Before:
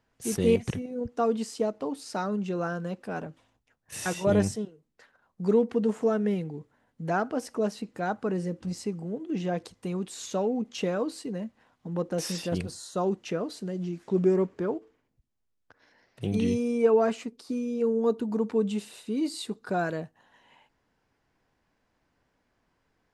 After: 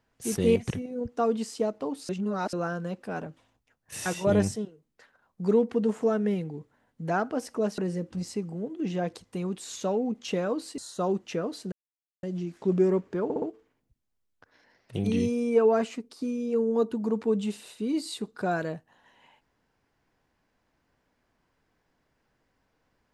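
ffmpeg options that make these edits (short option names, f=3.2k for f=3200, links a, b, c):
-filter_complex "[0:a]asplit=9[a][b][c][d][e][f][g][h][i];[a]atrim=end=2.092[j];[b]atrim=start=2.088:end=2.532,asetpts=PTS-STARTPTS,areverse[k];[c]atrim=start=2.528:end=7.782[l];[d]atrim=start=8.278:end=11.282[m];[e]atrim=start=12.748:end=13.69,asetpts=PTS-STARTPTS,afade=t=out:st=0.938:d=0.004:c=hsin,apad=pad_dur=0.51[n];[f]atrim=start=13.69:end=14.762,asetpts=PTS-STARTPTS,afade=t=in:d=0.004:c=hsin[o];[g]atrim=start=14.698:end=14.762[p];[h]atrim=start=14.698:end=14.762[q];[i]atrim=start=14.698[r];[j][k]acrossfade=d=0.004:c1=hsin:c2=hsin[s];[s][l]acrossfade=d=0.004:c1=hsin:c2=hsin[t];[t][m]acrossfade=d=0.004:c1=hsin:c2=hsin[u];[n][o]concat=n=2:v=0:a=1[v];[u][v]acrossfade=d=0.004:c1=hsin:c2=hsin[w];[w][p]acrossfade=d=0.004:c1=hsin:c2=hsin[x];[x][q]acrossfade=d=0.004:c1=hsin:c2=hsin[y];[y][r]acrossfade=d=0.004:c1=hsin:c2=hsin"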